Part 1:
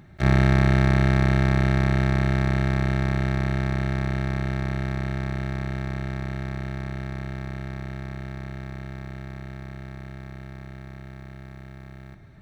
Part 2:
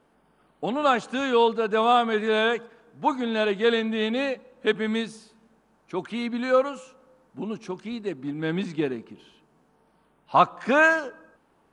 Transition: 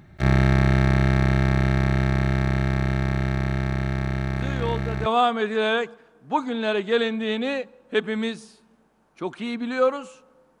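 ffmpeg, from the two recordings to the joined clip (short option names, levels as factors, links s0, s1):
-filter_complex "[1:a]asplit=2[s0][s1];[0:a]apad=whole_dur=10.6,atrim=end=10.6,atrim=end=5.062[s2];[s1]atrim=start=1.778:end=7.32[s3];[s0]atrim=start=1.07:end=1.78,asetpts=PTS-STARTPTS,volume=0.376,afade=t=in:d=0.004:c=hsin,afade=t=out:st=0.706:d=0.004:c=hsin,adelay=4350[s4];[s2][s3]acrossfade=d=0.004:c1=hsin:c2=hsin[s5];[s5][s4]amix=inputs=2:normalize=0"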